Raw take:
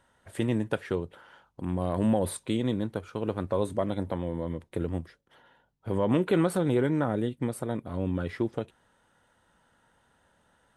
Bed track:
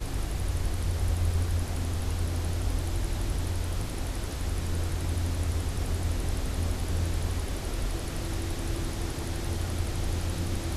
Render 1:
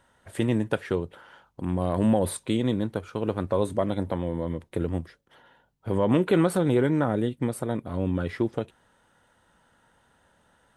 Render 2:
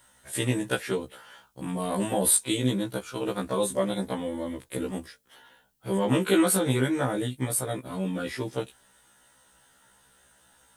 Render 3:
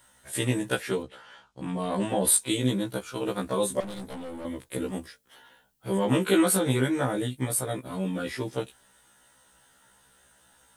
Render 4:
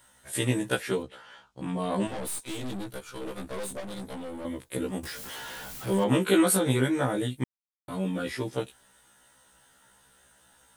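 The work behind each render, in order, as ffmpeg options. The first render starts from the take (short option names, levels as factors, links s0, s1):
-af "volume=1.41"
-af "crystalizer=i=5:c=0,afftfilt=real='re*1.73*eq(mod(b,3),0)':imag='im*1.73*eq(mod(b,3),0)':win_size=2048:overlap=0.75"
-filter_complex "[0:a]asplit=3[s0][s1][s2];[s0]afade=t=out:st=1.02:d=0.02[s3];[s1]lowpass=5900,afade=t=in:st=1.02:d=0.02,afade=t=out:st=2.26:d=0.02[s4];[s2]afade=t=in:st=2.26:d=0.02[s5];[s3][s4][s5]amix=inputs=3:normalize=0,asettb=1/sr,asplit=3[s6][s7][s8];[s6]atrim=end=3.804[s9];[s7]atrim=start=3.8:end=4.45,asetpts=PTS-STARTPTS,afade=t=in:d=0.004:c=qsin,afade=t=out:st=0.646:d=0.004:c=qsin,aeval=exprs='(tanh(56.2*val(0)+0.3)-tanh(0.3))/56.2':c=same[s10];[s8]atrim=start=4.446[s11];[s9][s10]acrossfade=d=0.004:c1=hsin:c2=qsin[s12];[s12][s11]acrossfade=d=0.004:c1=qsin:c2=hsin"
-filter_complex "[0:a]asettb=1/sr,asplit=3[s0][s1][s2];[s0]atrim=end=2.074[s3];[s1]atrim=start=2.07:end=3.91,asetpts=PTS-STARTPTS,afade=t=in:d=0.004:c=qsin,afade=t=out:st=1.836:d=0.004:c=qsin,aeval=exprs='(tanh(44.7*val(0)+0.65)-tanh(0.65))/44.7':c=same[s4];[s2]atrim=start=3.906[s5];[s3][s4]acrossfade=d=0.004:c1=hsin:c2=qsin[s6];[s6][s5]acrossfade=d=0.004:c1=qsin:c2=hsin,asettb=1/sr,asplit=3[s7][s8][s9];[s7]atrim=end=5.034[s10];[s8]atrim=start=5.03:end=6.04,asetpts=PTS-STARTPTS,afade=t=in:d=0.004:c=qsin,afade=t=out:st=1.006:d=0.004:c=qsin,aeval=exprs='val(0)+0.5*0.0178*sgn(val(0))':c=same[s11];[s9]atrim=start=6.036[s12];[s10][s11]acrossfade=d=0.004:c1=hsin:c2=qsin[s13];[s13][s12]acrossfade=d=0.004:c1=qsin:c2=hsin,asplit=3[s14][s15][s16];[s14]atrim=end=7.44,asetpts=PTS-STARTPTS,afade=t=out:st=7.436:d=0.004:c=hsin[s17];[s15]atrim=start=7.44:end=7.88,asetpts=PTS-STARTPTS,volume=0[s18];[s16]atrim=start=7.88,asetpts=PTS-STARTPTS,afade=t=in:d=0.004:c=hsin[s19];[s17][s18][s19]concat=n=3:v=0:a=1"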